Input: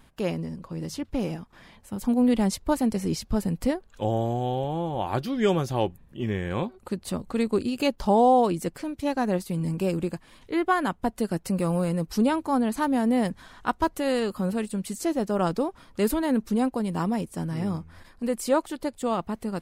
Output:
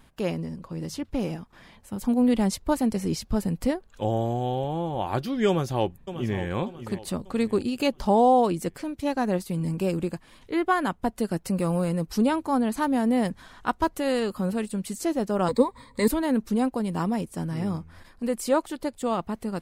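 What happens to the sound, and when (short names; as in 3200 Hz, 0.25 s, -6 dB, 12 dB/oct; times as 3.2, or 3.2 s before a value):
5.48–6.39 echo throw 0.59 s, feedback 40%, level -11.5 dB
15.48–16.08 ripple EQ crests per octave 0.99, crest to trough 17 dB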